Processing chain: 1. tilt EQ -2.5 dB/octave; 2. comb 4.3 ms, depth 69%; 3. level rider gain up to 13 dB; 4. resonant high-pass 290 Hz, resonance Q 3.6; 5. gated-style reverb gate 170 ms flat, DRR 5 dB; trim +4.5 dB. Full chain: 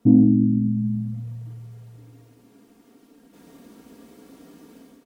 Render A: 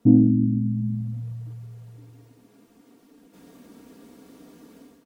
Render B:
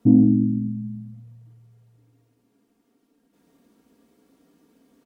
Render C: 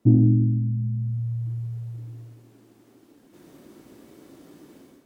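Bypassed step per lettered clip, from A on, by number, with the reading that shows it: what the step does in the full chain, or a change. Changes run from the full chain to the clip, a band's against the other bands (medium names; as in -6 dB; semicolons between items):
5, crest factor change +1.5 dB; 3, momentary loudness spread change -2 LU; 2, loudness change -3.5 LU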